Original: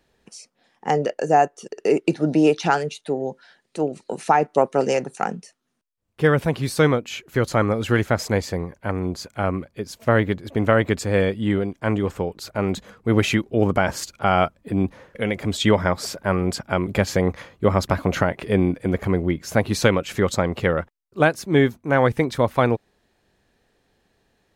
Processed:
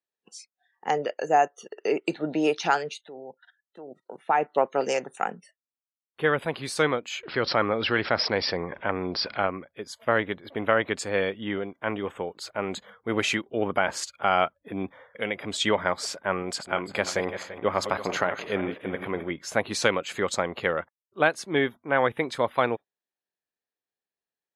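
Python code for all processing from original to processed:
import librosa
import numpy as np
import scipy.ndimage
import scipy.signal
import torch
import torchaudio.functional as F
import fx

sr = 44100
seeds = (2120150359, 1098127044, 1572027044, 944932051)

y = fx.chain(x, sr, fx.high_shelf(hz=9200.0, db=-3.0),
    fx.level_steps(step_db=17),
    fx.highpass(hz=61.0, slope=12), at=(3.05, 4.39))
y = fx.chain(y, sr, fx.brickwall_lowpass(high_hz=5700.0),
    fx.env_flatten(amount_pct=50), at=(7.23, 9.47))
y = fx.chain(y, sr, fx.reverse_delay_fb(ms=169, feedback_pct=56, wet_db=-9.5),
    fx.low_shelf(hz=280.0, db=-3.0), at=(16.42, 19.31))
y = fx.highpass(y, sr, hz=630.0, slope=6)
y = fx.noise_reduce_blind(y, sr, reduce_db=26)
y = scipy.signal.sosfilt(scipy.signal.butter(4, 10000.0, 'lowpass', fs=sr, output='sos'), y)
y = y * 10.0 ** (-1.5 / 20.0)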